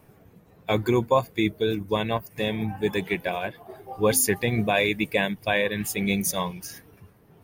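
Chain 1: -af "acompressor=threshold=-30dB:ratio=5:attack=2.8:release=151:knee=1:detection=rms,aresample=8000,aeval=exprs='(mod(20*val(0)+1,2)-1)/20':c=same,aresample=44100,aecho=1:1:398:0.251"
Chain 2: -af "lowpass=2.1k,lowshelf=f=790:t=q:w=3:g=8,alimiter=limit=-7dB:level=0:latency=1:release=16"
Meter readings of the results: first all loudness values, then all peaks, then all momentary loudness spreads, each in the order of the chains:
-36.5, -18.5 LUFS; -21.5, -7.0 dBFS; 12, 6 LU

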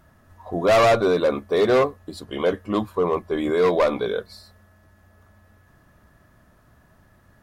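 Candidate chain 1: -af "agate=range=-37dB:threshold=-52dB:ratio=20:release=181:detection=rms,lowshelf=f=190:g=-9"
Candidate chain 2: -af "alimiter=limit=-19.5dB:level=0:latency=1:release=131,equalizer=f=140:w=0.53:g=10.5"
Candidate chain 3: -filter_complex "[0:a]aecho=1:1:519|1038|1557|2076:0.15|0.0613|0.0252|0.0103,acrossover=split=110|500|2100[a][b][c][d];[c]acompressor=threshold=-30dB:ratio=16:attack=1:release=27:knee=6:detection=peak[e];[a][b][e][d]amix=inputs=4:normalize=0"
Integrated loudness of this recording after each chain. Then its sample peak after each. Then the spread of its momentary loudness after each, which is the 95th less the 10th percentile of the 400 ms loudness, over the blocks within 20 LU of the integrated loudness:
-22.5, -24.5, -24.5 LUFS; -10.5, -12.5, -11.0 dBFS; 12, 9, 15 LU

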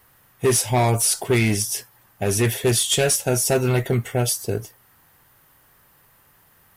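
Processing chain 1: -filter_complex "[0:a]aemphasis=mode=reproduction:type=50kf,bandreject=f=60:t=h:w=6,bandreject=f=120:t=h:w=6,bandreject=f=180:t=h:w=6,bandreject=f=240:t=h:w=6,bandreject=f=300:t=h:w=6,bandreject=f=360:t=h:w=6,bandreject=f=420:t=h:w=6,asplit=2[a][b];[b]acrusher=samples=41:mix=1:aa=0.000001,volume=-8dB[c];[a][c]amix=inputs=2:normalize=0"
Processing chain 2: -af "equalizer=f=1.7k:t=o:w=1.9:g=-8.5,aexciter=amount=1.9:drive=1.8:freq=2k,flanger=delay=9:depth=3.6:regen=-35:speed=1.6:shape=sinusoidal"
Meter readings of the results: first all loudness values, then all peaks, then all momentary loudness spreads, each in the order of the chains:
-22.0, -20.0 LUFS; -8.0, -5.0 dBFS; 7, 11 LU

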